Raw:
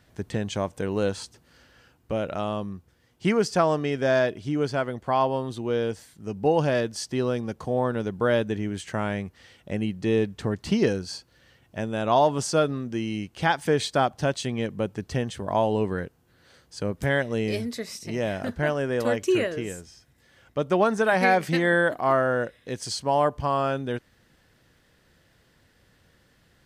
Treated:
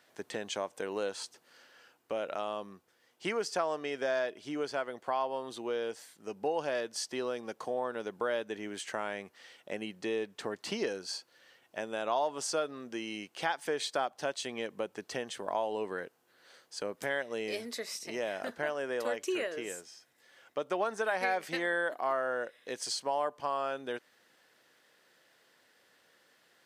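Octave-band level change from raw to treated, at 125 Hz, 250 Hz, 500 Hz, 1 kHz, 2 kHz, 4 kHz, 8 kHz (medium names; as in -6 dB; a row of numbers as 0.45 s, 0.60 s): -24.5 dB, -14.5 dB, -9.0 dB, -9.0 dB, -7.5 dB, -5.0 dB, -4.0 dB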